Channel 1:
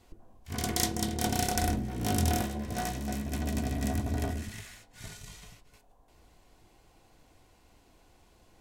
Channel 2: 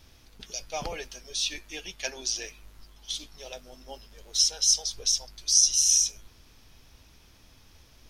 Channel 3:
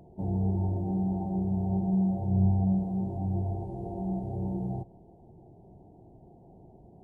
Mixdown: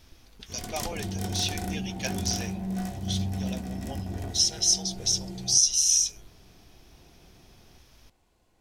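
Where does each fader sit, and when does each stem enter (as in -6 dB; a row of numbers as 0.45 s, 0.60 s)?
-7.0 dB, -0.5 dB, -6.0 dB; 0.00 s, 0.00 s, 0.75 s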